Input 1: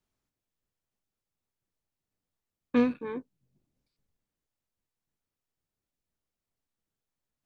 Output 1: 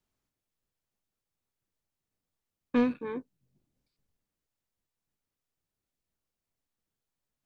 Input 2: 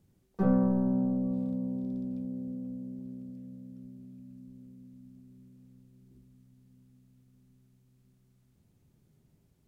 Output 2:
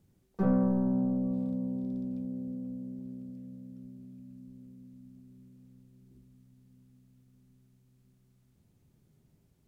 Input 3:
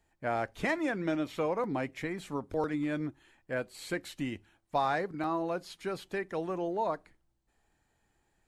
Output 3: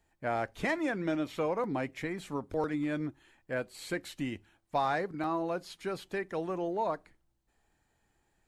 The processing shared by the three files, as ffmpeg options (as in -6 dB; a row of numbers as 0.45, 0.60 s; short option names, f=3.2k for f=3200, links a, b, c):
-af "asoftclip=type=tanh:threshold=-16dB"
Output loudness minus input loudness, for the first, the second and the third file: -1.0, -0.5, -0.5 LU